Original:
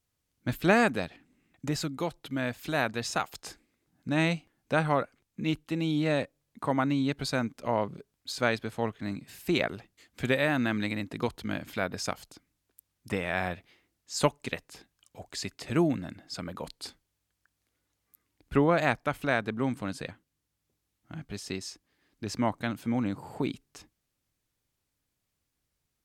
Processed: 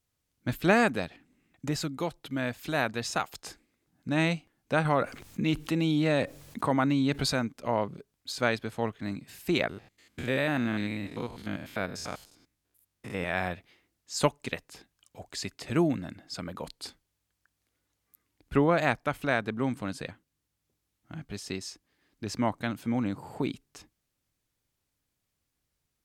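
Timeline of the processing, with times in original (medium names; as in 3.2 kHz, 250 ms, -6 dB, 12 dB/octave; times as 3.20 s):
4.85–7.33 s: level flattener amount 50%
9.69–13.24 s: spectrogram pixelated in time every 100 ms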